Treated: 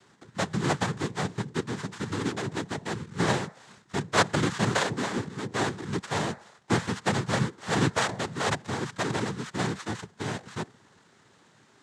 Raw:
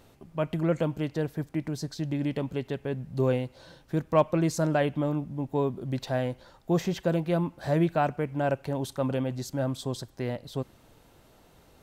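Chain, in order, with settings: sorted samples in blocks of 32 samples; de-hum 145.9 Hz, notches 10; noise-vocoded speech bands 6

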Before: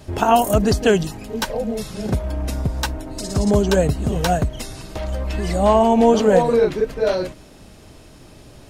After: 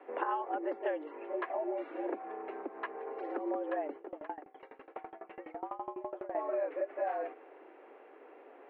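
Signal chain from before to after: compression 6:1, threshold -24 dBFS, peak gain reduction 15 dB; mistuned SSB +140 Hz 190–2200 Hz; 3.96–6.35 s: sawtooth tremolo in dB decaying 12 Hz, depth 23 dB; trim -7 dB

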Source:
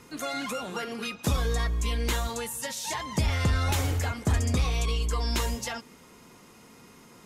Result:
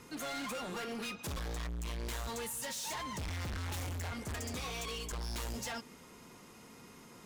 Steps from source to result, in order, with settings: 4.34–5.12 s: high-pass 320 Hz 6 dB/octave; overload inside the chain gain 35 dB; trim -2.5 dB

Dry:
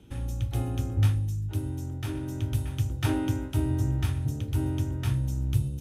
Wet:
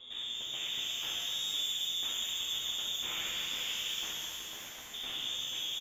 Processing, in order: comb 4.8 ms, depth 30%; wavefolder -33 dBFS; peak limiter -39 dBFS, peak gain reduction 6 dB; 4.02–4.94 s: high-pass 1.5 kHz 24 dB/octave; early reflections 11 ms -4.5 dB, 71 ms -6.5 dB; frequency inversion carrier 3.6 kHz; Chebyshev shaper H 6 -32 dB, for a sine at -31.5 dBFS; pitch-shifted reverb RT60 3.7 s, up +12 st, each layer -8 dB, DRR -3 dB

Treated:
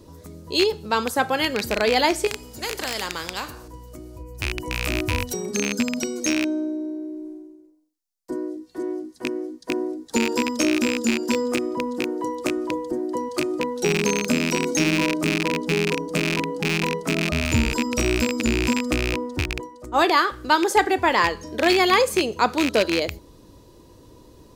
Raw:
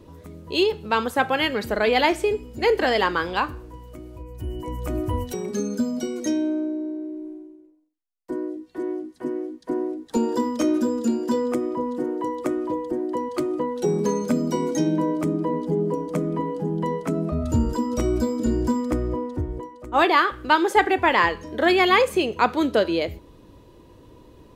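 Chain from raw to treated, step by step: rattle on loud lows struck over -28 dBFS, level -11 dBFS; resonant high shelf 3.8 kHz +7 dB, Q 1.5; 2.27–3.68 s: spectrum-flattening compressor 2:1

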